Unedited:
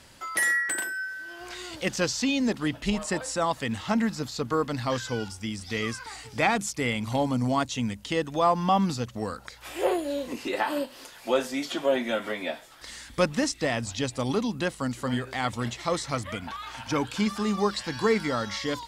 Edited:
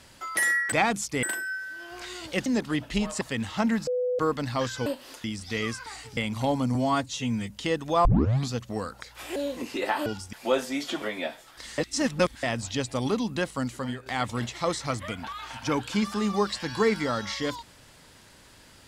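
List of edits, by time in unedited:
1.95–2.38 cut
3.13–3.52 cut
4.18–4.5 bleep 498 Hz -23.5 dBFS
5.17–5.44 swap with 10.77–11.15
6.37–6.88 move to 0.72
7.46–7.96 stretch 1.5×
8.51 tape start 0.45 s
9.82–10.07 cut
11.84–12.26 cut
13.02–13.67 reverse
14.89–15.3 fade out, to -10 dB

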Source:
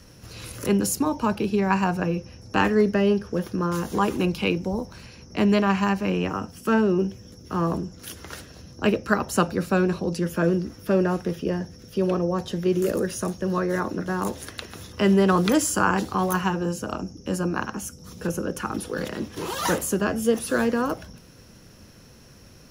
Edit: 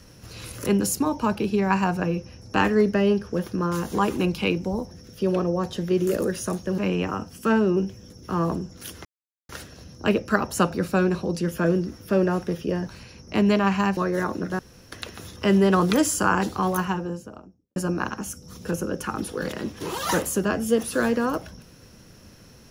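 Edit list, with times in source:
4.91–6 swap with 11.66–13.53
8.27 insert silence 0.44 s
14.15–14.48 room tone
16.16–17.32 studio fade out

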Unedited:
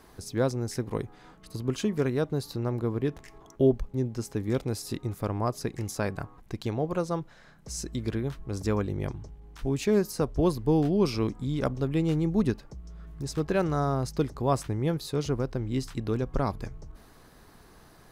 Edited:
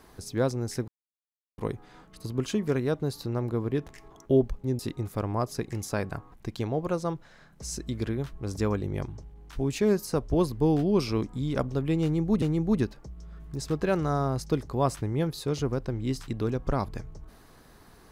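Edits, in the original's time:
0.88 insert silence 0.70 s
4.09–4.85 cut
12.09–12.48 loop, 2 plays

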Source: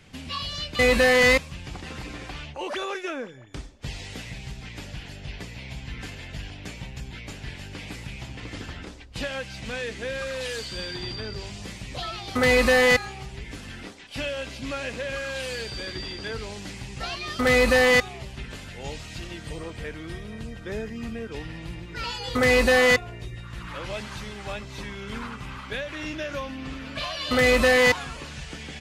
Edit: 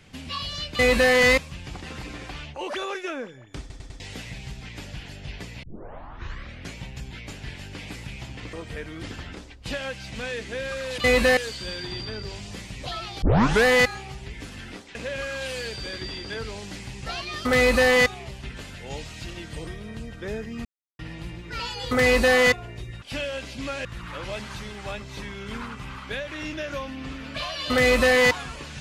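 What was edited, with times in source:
0.73–1.12 copy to 10.48
3.6 stutter in place 0.10 s, 4 plays
5.63 tape start 1.12 s
12.33 tape start 0.43 s
14.06–14.89 move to 23.46
19.61–20.11 move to 8.53
21.09–21.43 mute

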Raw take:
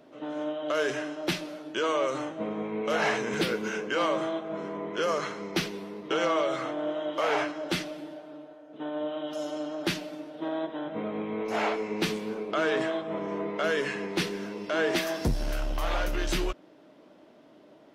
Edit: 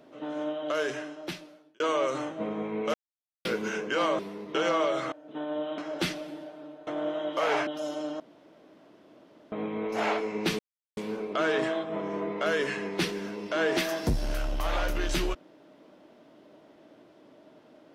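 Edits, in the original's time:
0.57–1.8 fade out
2.94–3.45 mute
4.19–5.75 cut
6.68–7.48 swap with 8.57–9.23
9.76–11.08 room tone
12.15 insert silence 0.38 s

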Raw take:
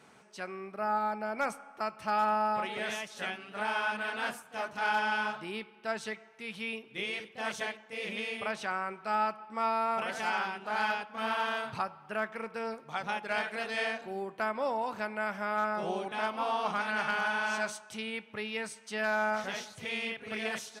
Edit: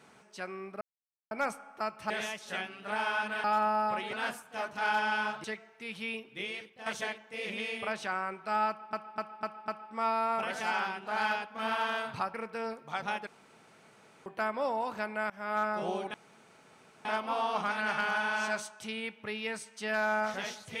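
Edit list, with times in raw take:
0.81–1.31 mute
2.1–2.79 move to 4.13
5.44–6.03 cut
6.84–7.45 fade out linear, to -10 dB
9.27–9.52 loop, 5 plays
11.93–12.35 cut
13.28–14.27 room tone
15.31–15.56 fade in, from -19.5 dB
16.15 insert room tone 0.91 s

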